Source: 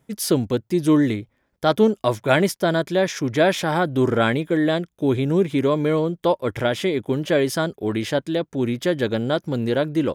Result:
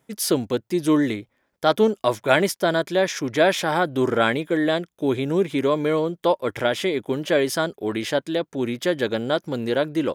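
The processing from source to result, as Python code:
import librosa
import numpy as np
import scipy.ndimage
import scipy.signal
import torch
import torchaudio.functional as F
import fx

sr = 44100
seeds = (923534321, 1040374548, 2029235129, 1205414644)

y = fx.low_shelf(x, sr, hz=180.0, db=-12.0)
y = y * 10.0 ** (1.0 / 20.0)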